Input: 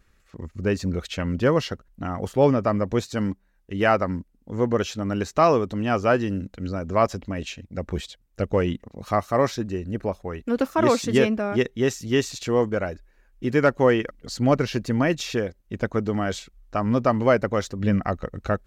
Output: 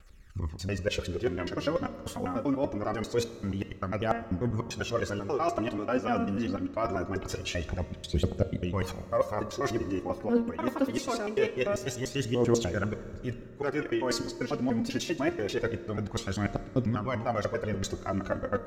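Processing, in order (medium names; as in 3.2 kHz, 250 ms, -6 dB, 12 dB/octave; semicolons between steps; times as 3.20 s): slices played last to first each 98 ms, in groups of 3; de-hum 232.1 Hz, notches 31; reverse; compression 6:1, threshold -28 dBFS, peak gain reduction 14.5 dB; reverse; overload inside the chain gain 18 dB; phaser 0.24 Hz, delay 4.4 ms, feedback 62%; on a send: reverberation RT60 2.7 s, pre-delay 3 ms, DRR 12.5 dB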